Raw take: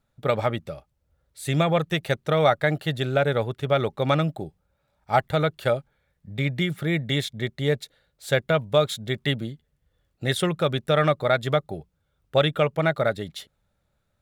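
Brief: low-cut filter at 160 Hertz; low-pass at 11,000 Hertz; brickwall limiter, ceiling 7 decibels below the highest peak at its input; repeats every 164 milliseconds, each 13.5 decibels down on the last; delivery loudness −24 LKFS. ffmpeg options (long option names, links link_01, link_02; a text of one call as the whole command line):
ffmpeg -i in.wav -af "highpass=160,lowpass=11000,alimiter=limit=-12.5dB:level=0:latency=1,aecho=1:1:164|328:0.211|0.0444,volume=3dB" out.wav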